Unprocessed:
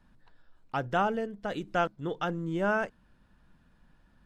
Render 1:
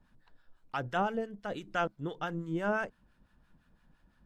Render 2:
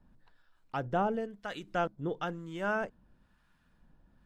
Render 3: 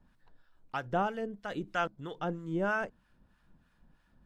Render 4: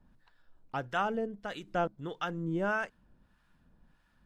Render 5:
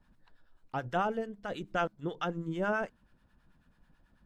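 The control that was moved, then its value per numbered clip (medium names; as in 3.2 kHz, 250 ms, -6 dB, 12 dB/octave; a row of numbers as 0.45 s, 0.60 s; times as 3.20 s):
harmonic tremolo, rate: 5.9 Hz, 1 Hz, 3.1 Hz, 1.6 Hz, 9.2 Hz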